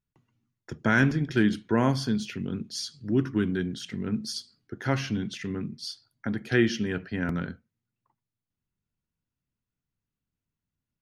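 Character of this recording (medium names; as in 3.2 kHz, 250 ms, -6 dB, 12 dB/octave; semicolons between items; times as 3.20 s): noise floor -89 dBFS; spectral tilt -5.0 dB/octave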